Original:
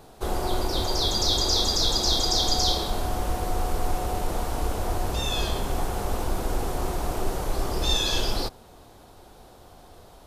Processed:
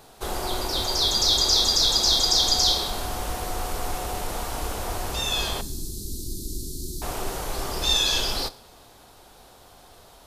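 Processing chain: 5.61–7.02 s: Chebyshev band-stop 350–4100 Hz, order 4; tilt shelf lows -4.5 dB, about 900 Hz; two-slope reverb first 0.41 s, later 1.5 s, from -15 dB, DRR 14.5 dB

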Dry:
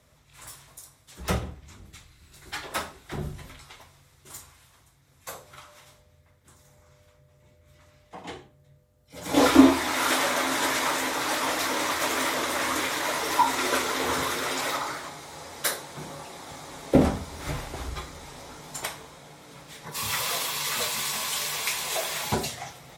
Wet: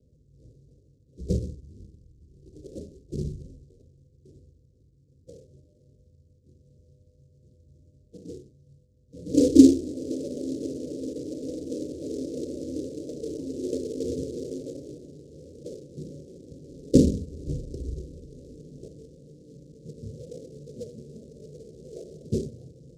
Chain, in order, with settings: steep low-pass 510 Hz 72 dB/octave; 1.85–2.56 s: compression 3:1, threshold -50 dBFS, peak gain reduction 4.5 dB; delay time shaken by noise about 5.6 kHz, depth 0.038 ms; trim +2.5 dB

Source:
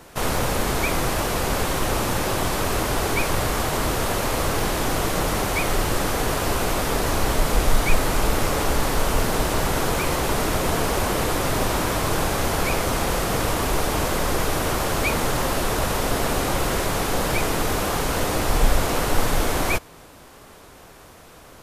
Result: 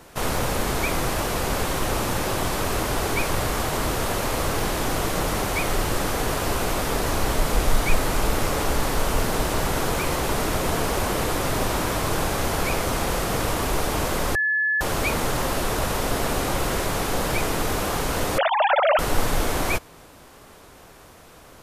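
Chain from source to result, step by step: 14.35–14.81 s: bleep 1.72 kHz -17.5 dBFS; 18.38–18.99 s: formants replaced by sine waves; trim -1.5 dB

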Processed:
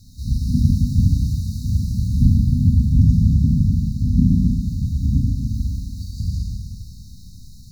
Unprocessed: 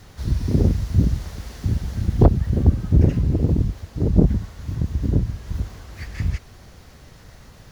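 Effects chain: FFT band-reject 270–3700 Hz; Schroeder reverb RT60 2 s, combs from 29 ms, DRR -3 dB; trim -1 dB

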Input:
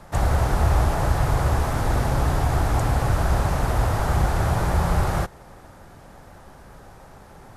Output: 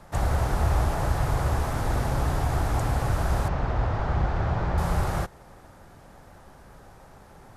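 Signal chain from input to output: 3.48–4.78 s: distance through air 190 m; trim -4 dB

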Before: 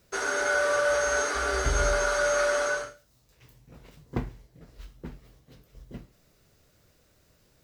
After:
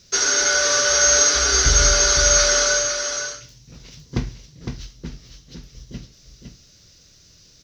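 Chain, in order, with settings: FFT filter 170 Hz 0 dB, 780 Hz -9 dB, 2.3 kHz 0 dB, 6 kHz +15 dB, 8.5 kHz -10 dB; delay 509 ms -6.5 dB; trim +8 dB

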